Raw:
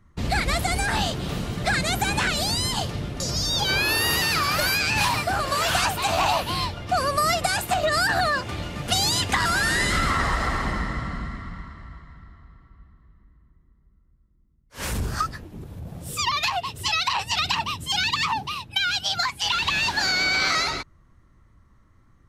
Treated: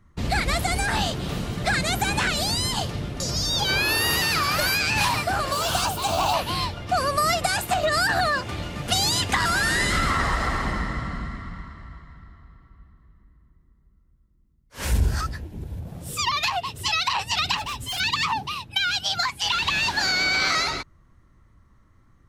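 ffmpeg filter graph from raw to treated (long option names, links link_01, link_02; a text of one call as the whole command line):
ffmpeg -i in.wav -filter_complex "[0:a]asettb=1/sr,asplit=3[link_01][link_02][link_03];[link_01]atrim=end=5.524[link_04];[link_02]atrim=start=5.52:end=6.34,asetpts=PTS-STARTPTS,afade=type=in:duration=0.004:curve=qsin,afade=type=out:start_time=0.816:duration=0.004:curve=qsin,equalizer=frequency=1900:width_type=o:width=0.46:gain=-15,bandreject=frequency=2500:width=18,acrusher=bits=5:mix=0:aa=0.5[link_05];[link_03]atrim=start=6.336[link_06];[link_04][link_05]acrossfade=duration=0.004:curve1=hsin:curve2=qsin[link_07];[link_07][link_06]acrossfade=duration=0.004:curve1=qsin:curve2=hsin,asettb=1/sr,asplit=3[link_08][link_09][link_10];[link_08]atrim=end=14.854[link_11];[link_09]atrim=start=14.85:end=15.81,asetpts=PTS-STARTPTS,afade=type=in:duration=0.004:curve=qsin,afade=type=out:start_time=0.956:duration=0.004:curve=qsin,equalizer=frequency=61:width=1.4:gain=11,bandreject=frequency=1200:width=5.6[link_12];[link_10]atrim=start=15.806[link_13];[link_11][link_12]acrossfade=duration=0.004:curve1=hsin:curve2=qsin[link_14];[link_14][link_13]acrossfade=duration=0.004:curve1=qsin:curve2=hsin,asettb=1/sr,asplit=3[link_15][link_16][link_17];[link_15]atrim=end=17.574[link_18];[link_16]atrim=start=17.57:end=18,asetpts=PTS-STARTPTS,afade=type=in:duration=0.004:curve=qsin,afade=type=out:start_time=0.426:duration=0.004:curve=qsin,aecho=1:1:6.6:0.65,atrim=end_sample=18963,afreqshift=-42,asoftclip=type=hard:threshold=-27.5dB[link_19];[link_17]atrim=start=17.996[link_20];[link_18][link_19]acrossfade=duration=0.004:curve1=hsin:curve2=qsin[link_21];[link_21][link_20]acrossfade=duration=0.004:curve1=qsin:curve2=hsin" out.wav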